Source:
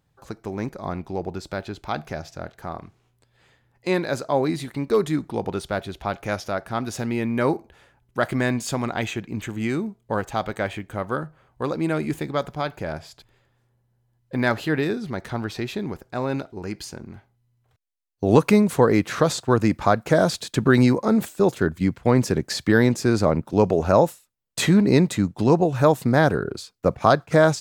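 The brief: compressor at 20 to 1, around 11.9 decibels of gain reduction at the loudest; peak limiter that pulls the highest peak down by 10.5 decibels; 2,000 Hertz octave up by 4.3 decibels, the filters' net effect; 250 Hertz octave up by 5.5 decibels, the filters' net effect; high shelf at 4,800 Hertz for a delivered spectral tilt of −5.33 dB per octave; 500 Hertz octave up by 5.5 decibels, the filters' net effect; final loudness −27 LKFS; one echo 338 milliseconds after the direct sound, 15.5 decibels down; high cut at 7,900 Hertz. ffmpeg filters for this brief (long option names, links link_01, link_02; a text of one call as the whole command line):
ffmpeg -i in.wav -af "lowpass=7900,equalizer=frequency=250:width_type=o:gain=5.5,equalizer=frequency=500:width_type=o:gain=5,equalizer=frequency=2000:width_type=o:gain=4,highshelf=frequency=4800:gain=8,acompressor=threshold=-17dB:ratio=20,alimiter=limit=-14dB:level=0:latency=1,aecho=1:1:338:0.168,volume=-1dB" out.wav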